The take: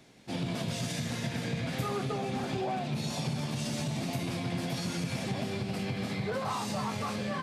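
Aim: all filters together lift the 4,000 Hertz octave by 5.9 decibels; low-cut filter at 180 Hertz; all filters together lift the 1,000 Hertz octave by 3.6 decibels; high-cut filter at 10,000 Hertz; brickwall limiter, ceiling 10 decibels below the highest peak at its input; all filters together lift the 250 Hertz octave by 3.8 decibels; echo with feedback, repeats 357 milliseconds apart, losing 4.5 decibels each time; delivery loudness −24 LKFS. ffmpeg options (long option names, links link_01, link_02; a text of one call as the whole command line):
ffmpeg -i in.wav -af "highpass=180,lowpass=10000,equalizer=frequency=250:width_type=o:gain=7,equalizer=frequency=1000:width_type=o:gain=4,equalizer=frequency=4000:width_type=o:gain=7,alimiter=level_in=4.5dB:limit=-24dB:level=0:latency=1,volume=-4.5dB,aecho=1:1:357|714|1071|1428|1785|2142|2499|2856|3213:0.596|0.357|0.214|0.129|0.0772|0.0463|0.0278|0.0167|0.01,volume=10.5dB" out.wav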